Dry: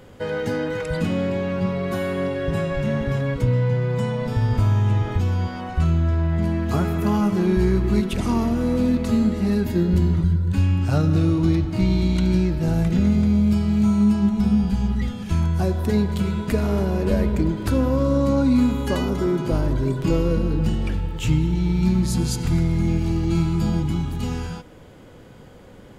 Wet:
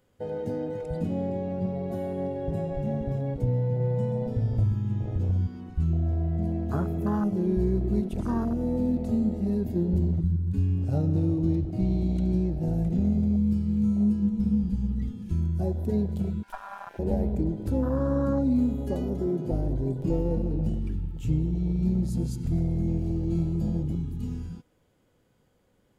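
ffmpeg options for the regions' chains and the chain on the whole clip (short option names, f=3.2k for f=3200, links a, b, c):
-filter_complex "[0:a]asettb=1/sr,asplit=3[a][b][c];[a]atrim=end=3.674[d];[b]atrim=start=3.67:end=5.47,asetpts=PTS-STARTPTS,afade=t=in:d=0.004:c=qsin,afade=t=out:st=1.796:d=0.004:c=qsin,highshelf=f=8.3k:g=-4.5,aecho=1:1:131:0.447,atrim=end_sample=79380[e];[c]atrim=start=5.466[f];[d][e]acrossfade=d=0.004:c1=hsin:c2=qsin[g];[g][f]acrossfade=d=0.004:c1=qsin:c2=hsin,asettb=1/sr,asplit=3[h][i][j];[h]atrim=end=16.434[k];[i]atrim=start=16.43:end=16.99,asetpts=PTS-STARTPTS,afade=t=in:d=0.004:c=qsin,afade=t=out:st=0.556:d=0.004:c=qsin,highpass=f=200:w=0.5412,highpass=f=200:w=1.3066,aeval=exprs='val(0)*sin(2*PI*1200*n/s)':c=same,aeval=exprs='clip(val(0),-1,0.0224)':c=same[l];[j]atrim=start=16.986[m];[k][l]acrossfade=d=0.004:c1=hsin:c2=qsin[n];[n][m]acrossfade=d=0.004:c1=qsin:c2=hsin,afwtdn=0.0708,highshelf=f=6.2k:g=9.5,volume=-6dB"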